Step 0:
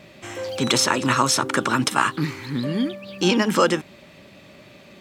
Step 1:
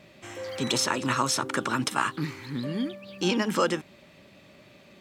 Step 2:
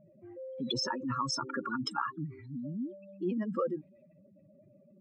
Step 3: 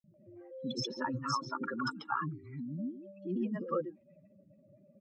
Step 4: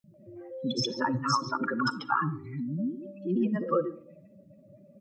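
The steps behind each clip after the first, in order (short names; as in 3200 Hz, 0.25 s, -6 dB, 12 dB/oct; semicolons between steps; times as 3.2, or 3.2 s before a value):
spectral repair 0.4–0.73, 1000–2300 Hz both; gain -6.5 dB
spectral contrast raised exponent 3.2; low-pass opened by the level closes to 860 Hz, open at -27.5 dBFS; gain -6.5 dB
air absorption 68 m; three bands offset in time highs, lows, mids 40/140 ms, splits 370/3900 Hz
digital reverb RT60 0.61 s, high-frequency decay 0.3×, pre-delay 15 ms, DRR 16.5 dB; gain +7 dB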